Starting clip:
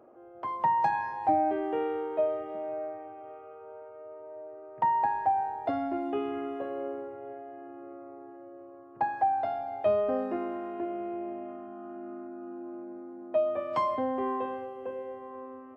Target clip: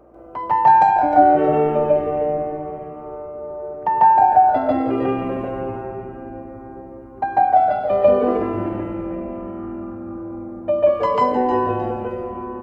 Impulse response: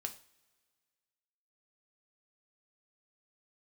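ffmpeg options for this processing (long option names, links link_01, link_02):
-filter_complex "[0:a]aeval=exprs='val(0)+0.000562*(sin(2*PI*60*n/s)+sin(2*PI*2*60*n/s)/2+sin(2*PI*3*60*n/s)/3+sin(2*PI*4*60*n/s)/4+sin(2*PI*5*60*n/s)/5)':channel_layout=same,atempo=1.3,asplit=5[link_01][link_02][link_03][link_04][link_05];[link_02]adelay=298,afreqshift=-150,volume=-9.5dB[link_06];[link_03]adelay=596,afreqshift=-300,volume=-18.1dB[link_07];[link_04]adelay=894,afreqshift=-450,volume=-26.8dB[link_08];[link_05]adelay=1192,afreqshift=-600,volume=-35.4dB[link_09];[link_01][link_06][link_07][link_08][link_09]amix=inputs=5:normalize=0,asplit=2[link_10][link_11];[1:a]atrim=start_sample=2205,adelay=139[link_12];[link_11][link_12]afir=irnorm=-1:irlink=0,volume=5.5dB[link_13];[link_10][link_13]amix=inputs=2:normalize=0,asetrate=42336,aresample=44100,volume=6.5dB"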